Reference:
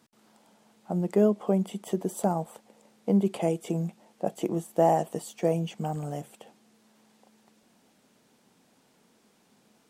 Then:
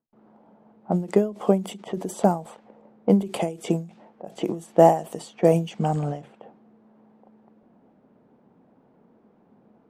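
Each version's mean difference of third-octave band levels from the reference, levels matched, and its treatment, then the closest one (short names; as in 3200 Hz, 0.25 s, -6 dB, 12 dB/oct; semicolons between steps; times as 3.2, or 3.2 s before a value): 4.5 dB: low-pass opened by the level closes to 810 Hz, open at -24.5 dBFS; ending taper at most 150 dB/s; gain +8 dB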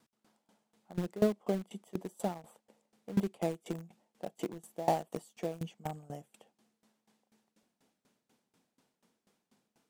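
6.0 dB: in parallel at -9.5 dB: bit-crush 4-bit; on the sum: dB-ramp tremolo decaying 4.1 Hz, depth 21 dB; gain -5 dB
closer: first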